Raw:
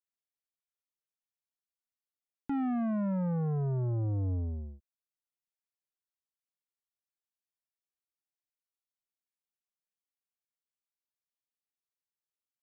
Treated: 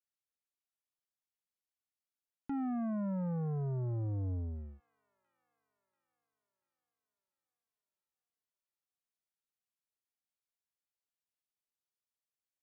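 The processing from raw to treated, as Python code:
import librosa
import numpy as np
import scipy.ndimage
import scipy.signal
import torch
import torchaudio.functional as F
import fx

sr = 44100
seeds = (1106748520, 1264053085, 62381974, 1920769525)

y = fx.echo_wet_highpass(x, sr, ms=688, feedback_pct=55, hz=2200.0, wet_db=-12)
y = fx.env_lowpass_down(y, sr, base_hz=1800.0, full_db=-32.0)
y = y * librosa.db_to_amplitude(-4.5)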